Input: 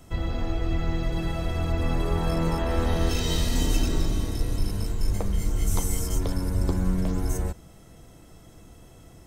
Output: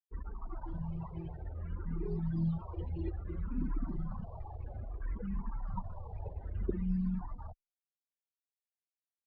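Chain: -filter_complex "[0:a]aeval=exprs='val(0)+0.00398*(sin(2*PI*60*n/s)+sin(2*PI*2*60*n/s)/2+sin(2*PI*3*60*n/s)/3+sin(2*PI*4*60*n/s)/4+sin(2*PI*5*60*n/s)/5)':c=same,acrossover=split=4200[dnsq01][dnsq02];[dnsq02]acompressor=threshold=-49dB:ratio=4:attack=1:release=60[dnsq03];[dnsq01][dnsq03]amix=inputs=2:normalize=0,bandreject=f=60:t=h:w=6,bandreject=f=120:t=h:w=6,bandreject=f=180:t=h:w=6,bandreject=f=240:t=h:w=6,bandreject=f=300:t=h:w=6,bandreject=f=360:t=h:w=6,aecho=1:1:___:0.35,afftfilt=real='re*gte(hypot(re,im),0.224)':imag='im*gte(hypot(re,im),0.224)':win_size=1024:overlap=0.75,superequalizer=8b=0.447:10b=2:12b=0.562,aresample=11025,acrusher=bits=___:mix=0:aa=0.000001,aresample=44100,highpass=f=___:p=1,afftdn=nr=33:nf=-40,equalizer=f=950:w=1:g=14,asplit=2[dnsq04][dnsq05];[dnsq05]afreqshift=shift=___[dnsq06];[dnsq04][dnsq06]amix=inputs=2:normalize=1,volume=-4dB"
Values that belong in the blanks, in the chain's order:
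5.3, 6, 81, -0.6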